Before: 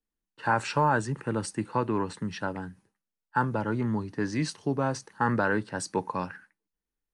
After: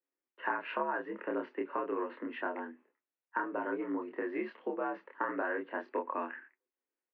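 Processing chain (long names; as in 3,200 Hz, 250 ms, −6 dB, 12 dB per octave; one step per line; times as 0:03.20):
downward compressor, threshold −29 dBFS, peak gain reduction 10 dB
double-tracking delay 27 ms −3 dB
single-sideband voice off tune +63 Hz 220–2,600 Hz
level −2 dB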